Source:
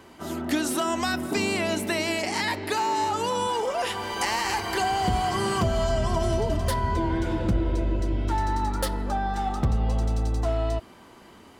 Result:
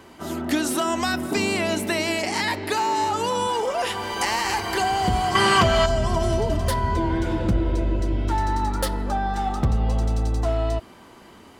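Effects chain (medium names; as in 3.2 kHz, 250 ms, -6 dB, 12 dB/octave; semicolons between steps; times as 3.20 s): 5.35–5.86 s: peaking EQ 2.2 kHz +11.5 dB 2.9 oct; trim +2.5 dB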